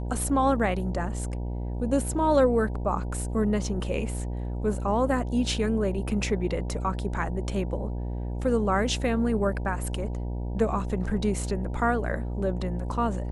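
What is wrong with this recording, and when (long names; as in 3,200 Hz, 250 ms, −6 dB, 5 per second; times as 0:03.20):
mains buzz 60 Hz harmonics 16 −31 dBFS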